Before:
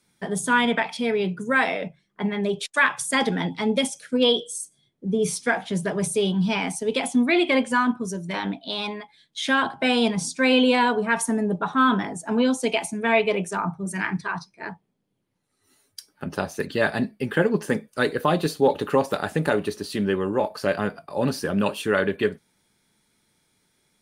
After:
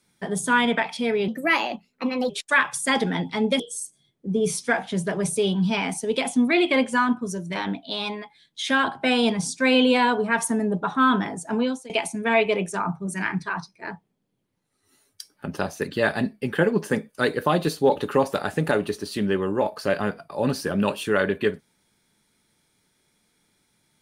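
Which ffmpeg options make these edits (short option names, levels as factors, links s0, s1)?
-filter_complex "[0:a]asplit=5[s0][s1][s2][s3][s4];[s0]atrim=end=1.284[s5];[s1]atrim=start=1.28:end=2.55,asetpts=PTS-STARTPTS,asetrate=55125,aresample=44100[s6];[s2]atrim=start=2.546:end=3.852[s7];[s3]atrim=start=4.378:end=12.68,asetpts=PTS-STARTPTS,afade=t=out:st=7.922:d=0.38:silence=0.0630957[s8];[s4]atrim=start=12.68,asetpts=PTS-STARTPTS,afade=t=in:d=0.004:c=hsin:silence=0.0630957[s9];[s5][s6]acrossfade=d=0.004:c1=hsin:c2=hsin[s10];[s10][s7]acrossfade=d=0.004:c1=hsin:c2=hsin[s11];[s8][s9]concat=n=2:v=0:a=1[s12];[s11][s12]acrossfade=d=0.004:c1=hsin:c2=hsin"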